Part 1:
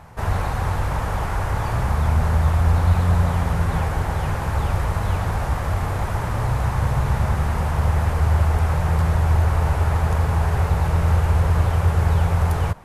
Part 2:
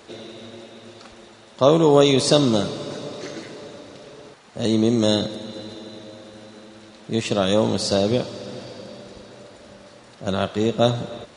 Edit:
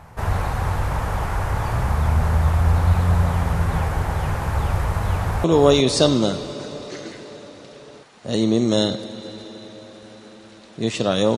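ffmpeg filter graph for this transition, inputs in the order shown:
-filter_complex "[0:a]apad=whole_dur=11.37,atrim=end=11.37,atrim=end=5.442[a];[1:a]atrim=start=1.748:end=7.68[b];[a][b]acrossfade=d=0.004:c1=hsin:c2=hsin,asplit=2[c][d];[d]afade=t=in:st=5.15:d=0.01,afade=t=out:st=5.44:d=0.01,aecho=0:1:360|720|1080|1440|1800:0.473151|0.189261|0.0757042|0.0302817|0.0121127[e];[c][e]amix=inputs=2:normalize=0"

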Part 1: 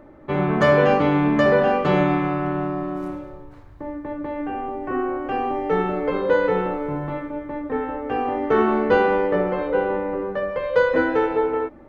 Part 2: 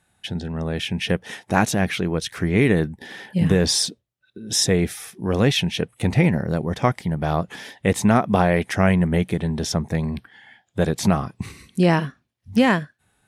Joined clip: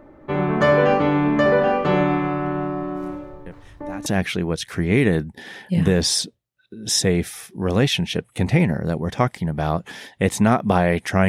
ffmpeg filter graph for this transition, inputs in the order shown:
-filter_complex "[1:a]asplit=2[a][b];[0:a]apad=whole_dur=11.28,atrim=end=11.28,atrim=end=4.062[c];[b]atrim=start=1.698:end=8.92[d];[a]atrim=start=1.1:end=1.7,asetpts=PTS-STARTPTS,volume=-18dB,afade=t=in:d=0.004:c=hsin,afade=t=out:st=0.596:d=0.004:c=hsin,adelay=3460[e];[c][d]acrossfade=d=0.004:c1=hsin:c2=hsin[f];[f][e]amix=inputs=2:normalize=0"

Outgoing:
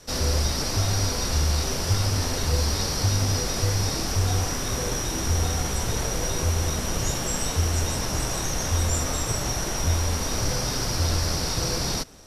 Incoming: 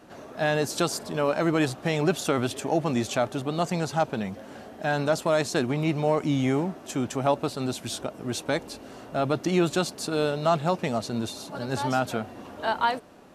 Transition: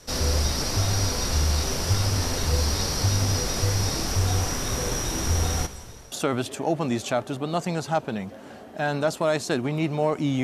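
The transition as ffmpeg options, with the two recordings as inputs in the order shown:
-filter_complex "[0:a]asplit=3[a][b][c];[a]afade=t=out:st=5.65:d=0.02[d];[b]aeval=exprs='val(0)*pow(10,-39*if(lt(mod(0.58*n/s,1),2*abs(0.58)/1000),1-mod(0.58*n/s,1)/(2*abs(0.58)/1000),(mod(0.58*n/s,1)-2*abs(0.58)/1000)/(1-2*abs(0.58)/1000))/20)':c=same,afade=t=in:st=5.65:d=0.02,afade=t=out:st=6.12:d=0.02[e];[c]afade=t=in:st=6.12:d=0.02[f];[d][e][f]amix=inputs=3:normalize=0,apad=whole_dur=10.43,atrim=end=10.43,atrim=end=6.122[g];[1:a]atrim=start=2.168:end=6.48[h];[g][h]acrossfade=d=0.004:c1=hsin:c2=hsin"

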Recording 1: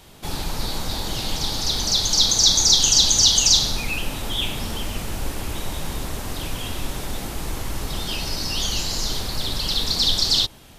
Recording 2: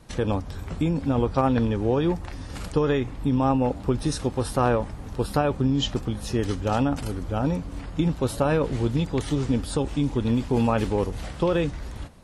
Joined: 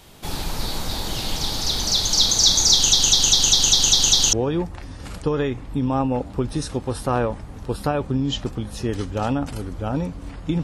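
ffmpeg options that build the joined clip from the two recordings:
-filter_complex "[0:a]apad=whole_dur=10.63,atrim=end=10.63,asplit=8[a][b][c][d][e][f][g][h];[a]atrim=end=2.932[i];[b]atrim=start=2.728:end=2.932[j];[c]atrim=start=2.728:end=2.932[k];[d]atrim=start=2.728:end=2.932[l];[e]atrim=start=2.728:end=2.932[m];[f]atrim=start=2.728:end=2.932[n];[g]atrim=start=2.728:end=2.932[o];[h]atrim=start=2.728:end=2.932[p];[1:a]atrim=start=1.828:end=8.13[q];[i][j]acrossfade=d=0.004:c1=hsin:c2=hsin[r];[r][k]acrossfade=d=0.004:c1=hsin:c2=hsin[s];[s][l]acrossfade=d=0.004:c1=hsin:c2=hsin[t];[t][m]acrossfade=d=0.004:c1=hsin:c2=hsin[u];[u][n]acrossfade=d=0.004:c1=hsin:c2=hsin[v];[v][o]acrossfade=d=0.004:c1=hsin:c2=hsin[w];[w][p]acrossfade=d=0.004:c1=hsin:c2=hsin[x];[x][q]acrossfade=d=0.004:c1=hsin:c2=hsin"

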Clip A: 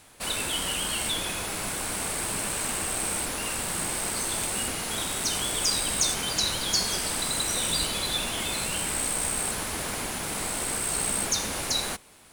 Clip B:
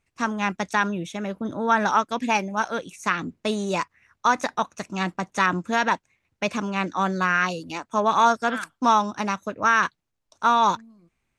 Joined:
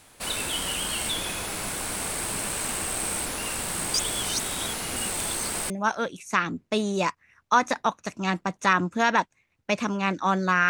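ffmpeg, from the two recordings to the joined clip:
-filter_complex "[0:a]apad=whole_dur=10.69,atrim=end=10.69,asplit=2[a][b];[a]atrim=end=3.942[c];[b]atrim=start=3.938:end=5.702,asetpts=PTS-STARTPTS,areverse[d];[1:a]atrim=start=2.428:end=7.42[e];[c][d]acrossfade=d=0.004:c1=hsin:c2=hsin[f];[f][e]acrossfade=d=0.004:c1=hsin:c2=hsin"

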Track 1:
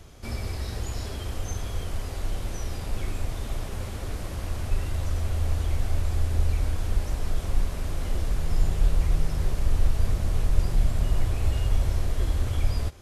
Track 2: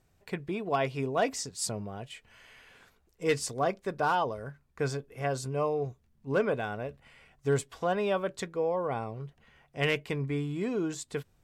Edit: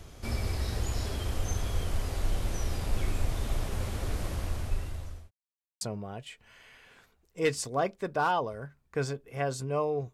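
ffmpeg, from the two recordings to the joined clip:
-filter_complex "[0:a]apad=whole_dur=10.13,atrim=end=10.13,asplit=2[a][b];[a]atrim=end=5.31,asetpts=PTS-STARTPTS,afade=t=out:st=4.26:d=1.05[c];[b]atrim=start=5.31:end=5.81,asetpts=PTS-STARTPTS,volume=0[d];[1:a]atrim=start=1.65:end=5.97,asetpts=PTS-STARTPTS,afade=t=in:d=0.004:c=hsin[e];[c][d][e]concat=n=3:v=0:a=1"

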